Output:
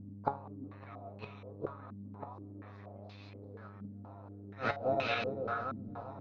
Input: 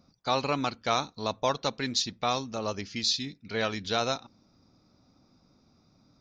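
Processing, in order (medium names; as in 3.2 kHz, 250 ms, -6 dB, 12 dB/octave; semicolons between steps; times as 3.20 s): backward echo that repeats 198 ms, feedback 76%, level -2.5 dB; bass shelf 120 Hz +2.5 dB; in parallel at -2.5 dB: peak limiter -23 dBFS, peak gain reduction 11.5 dB; on the sum: inverted gate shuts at -17 dBFS, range -31 dB; feedback comb 140 Hz, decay 0.38 s, harmonics all, mix 70%; mains buzz 100 Hz, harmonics 32, -56 dBFS -8 dB/octave; flange 1.2 Hz, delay 2.8 ms, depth 2.8 ms, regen +77%; step-sequenced low-pass 4.2 Hz 240–2600 Hz; trim +9.5 dB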